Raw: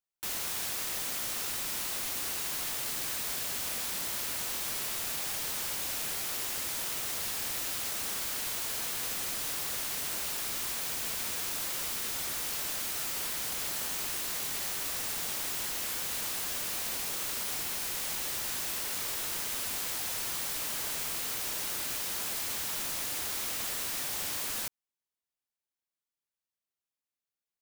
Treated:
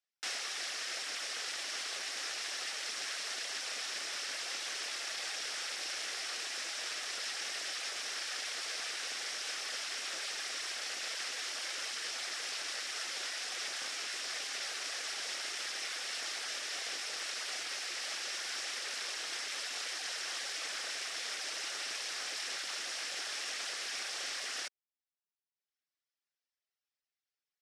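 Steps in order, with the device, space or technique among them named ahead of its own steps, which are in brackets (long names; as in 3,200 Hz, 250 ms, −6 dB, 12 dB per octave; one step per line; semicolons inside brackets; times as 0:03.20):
meter weighting curve A
reverb reduction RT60 0.96 s
high-pass filter 140 Hz
parametric band 6,600 Hz −6 dB 0.76 octaves
full-range speaker at full volume (highs frequency-modulated by the lows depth 0.49 ms; loudspeaker in its box 280–8,700 Hz, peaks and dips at 970 Hz −9 dB, 1,800 Hz +3 dB, 5,400 Hz +8 dB)
level +2 dB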